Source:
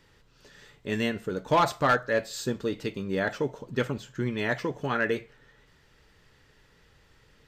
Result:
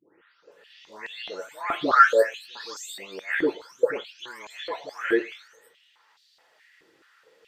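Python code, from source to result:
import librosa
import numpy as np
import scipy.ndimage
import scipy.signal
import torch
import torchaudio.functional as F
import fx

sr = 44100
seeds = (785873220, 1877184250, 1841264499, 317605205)

y = fx.spec_delay(x, sr, highs='late', ms=518)
y = fx.filter_held_highpass(y, sr, hz=4.7, low_hz=330.0, high_hz=4100.0)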